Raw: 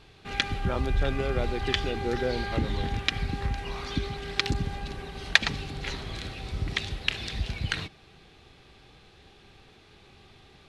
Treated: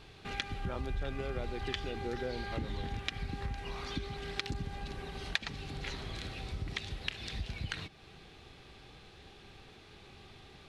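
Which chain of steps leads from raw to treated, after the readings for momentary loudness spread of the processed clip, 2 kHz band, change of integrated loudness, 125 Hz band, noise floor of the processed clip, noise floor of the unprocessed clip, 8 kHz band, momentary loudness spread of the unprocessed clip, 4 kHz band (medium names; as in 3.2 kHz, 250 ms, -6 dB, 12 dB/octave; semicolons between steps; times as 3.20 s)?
17 LU, -10.5 dB, -9.5 dB, -8.5 dB, -56 dBFS, -55 dBFS, -9.5 dB, 8 LU, -9.5 dB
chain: compression 2:1, threshold -41 dBFS, peak gain reduction 15.5 dB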